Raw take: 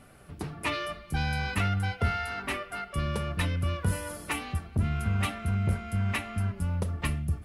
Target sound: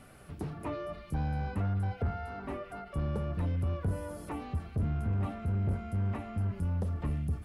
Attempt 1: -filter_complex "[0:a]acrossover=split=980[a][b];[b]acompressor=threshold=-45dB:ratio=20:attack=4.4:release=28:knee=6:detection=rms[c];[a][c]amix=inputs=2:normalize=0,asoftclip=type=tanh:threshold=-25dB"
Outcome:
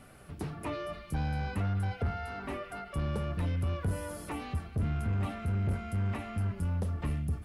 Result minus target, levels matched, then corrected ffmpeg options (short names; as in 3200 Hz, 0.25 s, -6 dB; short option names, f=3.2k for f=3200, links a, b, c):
compressor: peak gain reduction -8 dB
-filter_complex "[0:a]acrossover=split=980[a][b];[b]acompressor=threshold=-53.5dB:ratio=20:attack=4.4:release=28:knee=6:detection=rms[c];[a][c]amix=inputs=2:normalize=0,asoftclip=type=tanh:threshold=-25dB"